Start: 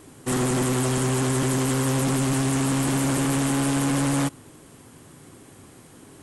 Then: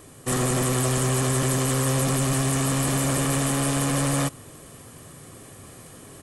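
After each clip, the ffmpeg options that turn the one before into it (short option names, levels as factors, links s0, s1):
-af "highshelf=f=11000:g=6.5,aecho=1:1:1.7:0.37,areverse,acompressor=mode=upward:threshold=0.0126:ratio=2.5,areverse"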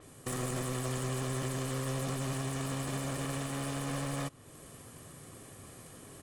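-af "alimiter=level_in=1.19:limit=0.0631:level=0:latency=1:release=384,volume=0.841,aeval=exprs='0.0562*(cos(1*acos(clip(val(0)/0.0562,-1,1)))-cos(1*PI/2))+0.01*(cos(3*acos(clip(val(0)/0.0562,-1,1)))-cos(3*PI/2))':c=same,adynamicequalizer=threshold=0.002:dfrequency=6400:dqfactor=0.7:tfrequency=6400:tqfactor=0.7:attack=5:release=100:ratio=0.375:range=3:mode=cutabove:tftype=highshelf"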